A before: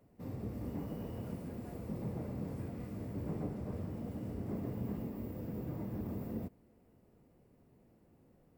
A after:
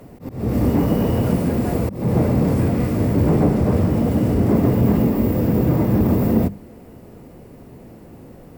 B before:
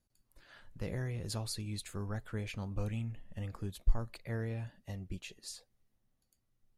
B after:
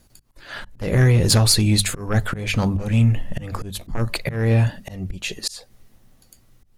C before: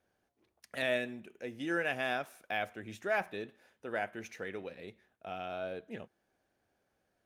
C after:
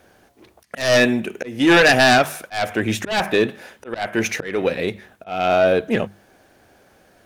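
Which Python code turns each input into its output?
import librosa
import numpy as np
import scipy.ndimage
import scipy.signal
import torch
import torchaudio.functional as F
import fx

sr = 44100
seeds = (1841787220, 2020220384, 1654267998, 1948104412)

y = fx.fold_sine(x, sr, drive_db=13, ceiling_db=-16.0)
y = fx.auto_swell(y, sr, attack_ms=264.0)
y = fx.hum_notches(y, sr, base_hz=50, count=4)
y = y * librosa.db_to_amplitude(8.0)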